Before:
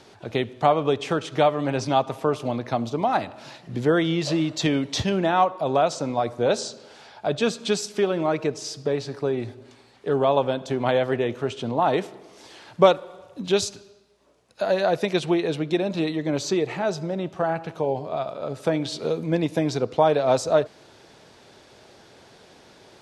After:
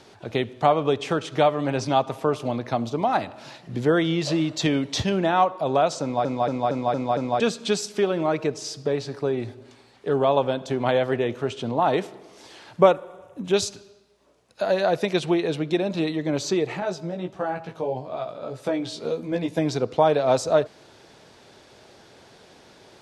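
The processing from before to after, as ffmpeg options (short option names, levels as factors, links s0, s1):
-filter_complex "[0:a]asettb=1/sr,asplit=3[s0][s1][s2];[s0]atrim=end=12.814[s3];[s1]atrim=start=12.81:end=13.54,asetpts=PTS-STARTPTS,afade=t=in:d=0.004:c=qsin,afade=t=out:st=0.726:d=0.004:c=qsin,equalizer=f=4400:t=o:w=0.67:g=-14.5[s4];[s2]atrim=start=13.536[s5];[s3][s4]acrossfade=d=0.004:c1=hsin:c2=qsin[s6];[s6][s5]acrossfade=d=0.004:c1=qsin:c2=hsin,asettb=1/sr,asplit=3[s7][s8][s9];[s7]atrim=end=16.804[s10];[s8]atrim=start=16.8:end=19.58,asetpts=PTS-STARTPTS,afade=t=in:d=0.004:c=qsin,afade=t=out:st=2.776:d=0.004:c=qsin,flanger=delay=15.5:depth=2:speed=1.6[s11];[s9]atrim=start=19.576[s12];[s10][s11]acrossfade=d=0.004:c1=hsin:c2=qsin[s13];[s13][s12]acrossfade=d=0.004:c1=qsin:c2=hsin,asplit=7[s14][s15][s16][s17][s18][s19][s20];[s14]atrim=end=6.252[s21];[s15]atrim=start=6.018:end=6.252[s22];[s16]atrim=start=6.018:end=6.252[s23];[s17]atrim=start=6.018:end=6.252[s24];[s18]atrim=start=6.018:end=6.252[s25];[s19]atrim=start=6.018:end=6.252[s26];[s20]atrim=start=7.398[s27];[s21][s22]acrossfade=d=0.004:c1=hsin:c2=hsin[s28];[s28][s23]acrossfade=d=0.004:c1=hsin:c2=hsin[s29];[s29][s24]acrossfade=d=0.004:c1=hsin:c2=hsin[s30];[s30][s25]acrossfade=d=0.004:c1=hsin:c2=hsin[s31];[s31][s26]acrossfade=d=0.004:c1=hsin:c2=hsin[s32];[s32][s27]acrossfade=d=0.004:c1=hsin:c2=hsin"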